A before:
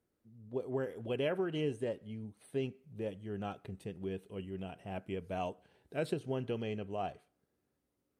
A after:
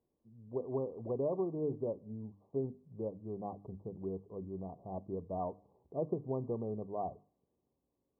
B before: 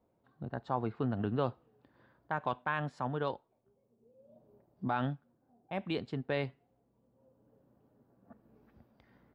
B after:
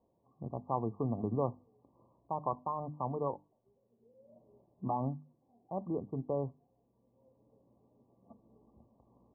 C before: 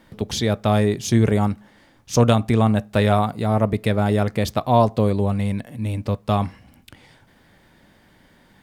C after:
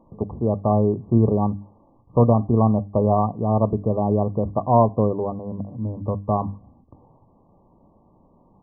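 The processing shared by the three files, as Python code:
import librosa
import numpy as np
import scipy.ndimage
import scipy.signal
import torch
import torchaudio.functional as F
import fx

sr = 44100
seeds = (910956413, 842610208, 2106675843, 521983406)

y = fx.brickwall_lowpass(x, sr, high_hz=1200.0)
y = fx.hum_notches(y, sr, base_hz=50, count=6)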